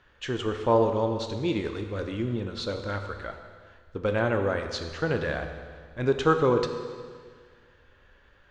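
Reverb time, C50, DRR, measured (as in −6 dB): 1.8 s, 7.0 dB, 5.5 dB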